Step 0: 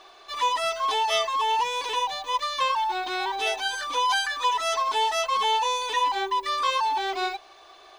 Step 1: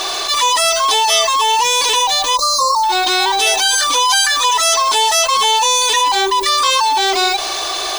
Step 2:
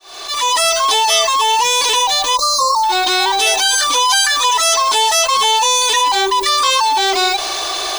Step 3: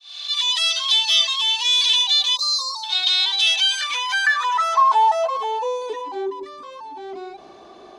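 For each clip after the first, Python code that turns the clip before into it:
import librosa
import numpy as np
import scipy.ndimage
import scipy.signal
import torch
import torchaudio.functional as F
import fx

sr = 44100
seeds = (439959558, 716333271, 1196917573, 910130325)

y1 = fx.spec_erase(x, sr, start_s=2.36, length_s=0.48, low_hz=1400.0, high_hz=3700.0)
y1 = fx.bass_treble(y1, sr, bass_db=1, treble_db=15)
y1 = fx.env_flatten(y1, sr, amount_pct=70)
y1 = y1 * 10.0 ** (5.5 / 20.0)
y2 = fx.fade_in_head(y1, sr, length_s=0.57)
y3 = fx.filter_sweep_bandpass(y2, sr, from_hz=3500.0, to_hz=200.0, start_s=3.44, end_s=6.67, q=3.4)
y3 = y3 * 10.0 ** (2.0 / 20.0)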